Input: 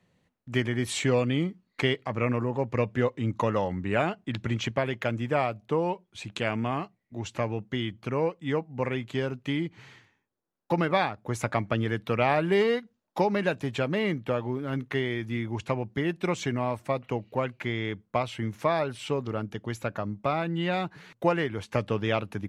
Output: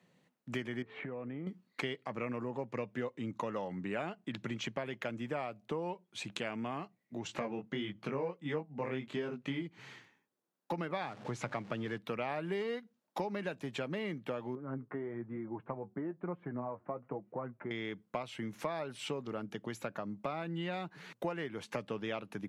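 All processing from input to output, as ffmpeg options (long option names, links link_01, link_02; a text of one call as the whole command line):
ffmpeg -i in.wav -filter_complex "[0:a]asettb=1/sr,asplit=3[link_01][link_02][link_03];[link_01]atrim=end=0.824[link_04];[link_02]atrim=start=0.82:end=1.47,asetpts=PTS-STARTPTS,afade=type=in:duration=0.004:curve=qsin,afade=type=out:start_time=0.646:duration=0.004:curve=qsin,lowpass=frequency=1900:width=0.5412,lowpass=frequency=1900:width=1.3066,aeval=exprs='val(0)+0.00355*sin(2*PI*440*n/s)':channel_layout=same,acompressor=threshold=-36dB:ratio=6:attack=3.2:release=140:knee=1:detection=peak[link_05];[link_03]atrim=start=1.466[link_06];[link_04][link_05]acrossfade=duration=0.004:curve1=hsin:curve2=qsin[link_07];[link_07][link_06]acrossfade=duration=0.004:curve1=qsin:curve2=hsin,asettb=1/sr,asplit=3[link_08][link_09][link_10];[link_08]atrim=end=7.274[link_11];[link_09]atrim=start=7.27:end=9.62,asetpts=PTS-STARTPTS,afade=type=in:duration=0.004:curve=qsin,afade=type=out:start_time=2.346:duration=0.004:curve=qsin,lowpass=frequency=4000:poles=1,acontrast=65,flanger=delay=19.5:depth=3.4:speed=1.5[link_12];[link_10]atrim=start=9.616[link_13];[link_11][link_12]acrossfade=duration=0.004:curve1=hsin:curve2=qsin[link_14];[link_14][link_13]acrossfade=duration=0.004:curve1=qsin:curve2=hsin,asettb=1/sr,asplit=3[link_15][link_16][link_17];[link_15]atrim=end=11.014[link_18];[link_16]atrim=start=11.01:end=11.98,asetpts=PTS-STARTPTS,afade=type=in:duration=0.004:curve=qsin,afade=type=out:start_time=0.966:duration=0.004:curve=qsin,aeval=exprs='val(0)+0.5*0.0126*sgn(val(0))':channel_layout=same,lowpass=5600,equalizer=frequency=130:width_type=o:width=0.23:gain=6.5[link_19];[link_17]atrim=start=11.976[link_20];[link_18][link_19]acrossfade=duration=0.004:curve1=hsin:curve2=qsin[link_21];[link_21][link_20]acrossfade=duration=0.004:curve1=qsin:curve2=hsin,asettb=1/sr,asplit=3[link_22][link_23][link_24];[link_22]atrim=end=14.554[link_25];[link_23]atrim=start=14.55:end=17.71,asetpts=PTS-STARTPTS,afade=type=in:duration=0.004:curve=qsin,afade=type=out:start_time=3.156:duration=0.004:curve=qsin,lowpass=frequency=1400:width=0.5412,lowpass=frequency=1400:width=1.3066,flanger=delay=5.5:depth=5.3:regen=40:speed=1.1:shape=sinusoidal[link_26];[link_24]atrim=start=17.706[link_27];[link_25][link_26]acrossfade=duration=0.004:curve1=hsin:curve2=qsin[link_28];[link_28][link_27]acrossfade=duration=0.004:curve1=qsin:curve2=hsin,highpass=frequency=140:width=0.5412,highpass=frequency=140:width=1.3066,acompressor=threshold=-38dB:ratio=3" out.wav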